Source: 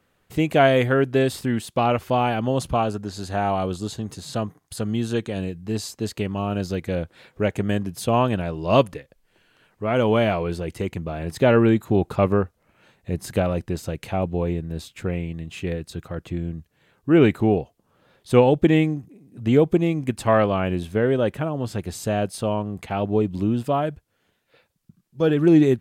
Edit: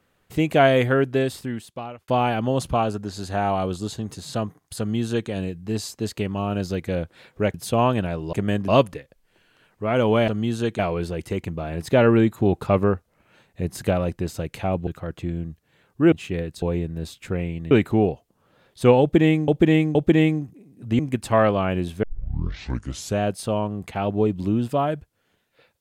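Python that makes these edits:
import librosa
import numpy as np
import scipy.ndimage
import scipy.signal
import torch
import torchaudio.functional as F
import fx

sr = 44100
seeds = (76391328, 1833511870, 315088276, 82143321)

y = fx.edit(x, sr, fx.fade_out_span(start_s=0.94, length_s=1.14),
    fx.duplicate(start_s=4.79, length_s=0.51, to_s=10.28),
    fx.move(start_s=7.54, length_s=0.35, to_s=8.68),
    fx.swap(start_s=14.36, length_s=1.09, other_s=15.95, other_length_s=1.25),
    fx.repeat(start_s=18.5, length_s=0.47, count=3),
    fx.cut(start_s=19.54, length_s=0.4),
    fx.tape_start(start_s=20.98, length_s=1.17), tone=tone)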